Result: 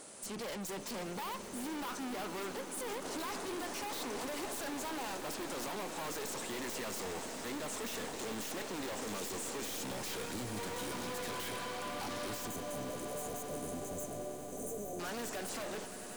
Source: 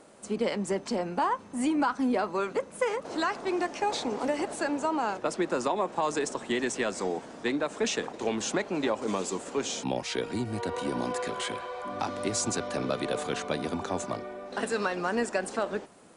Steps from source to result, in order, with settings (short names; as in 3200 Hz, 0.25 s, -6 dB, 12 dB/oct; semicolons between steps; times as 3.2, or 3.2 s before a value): tube stage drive 39 dB, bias 0.55; pre-emphasis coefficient 0.8; sine folder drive 14 dB, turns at -34 dBFS; spectral delete 12.47–15, 810–5900 Hz; swelling echo 95 ms, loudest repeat 8, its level -17 dB; gain -3.5 dB